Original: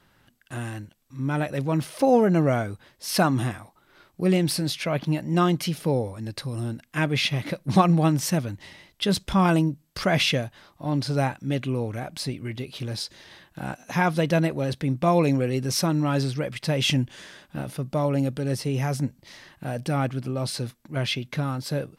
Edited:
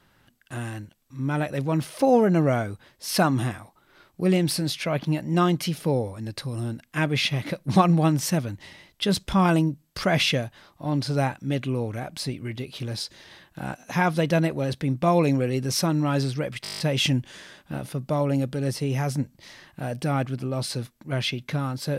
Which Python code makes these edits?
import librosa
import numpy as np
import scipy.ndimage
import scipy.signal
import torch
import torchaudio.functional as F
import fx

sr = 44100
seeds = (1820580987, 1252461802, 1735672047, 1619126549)

y = fx.edit(x, sr, fx.stutter(start_s=16.63, slice_s=0.02, count=9), tone=tone)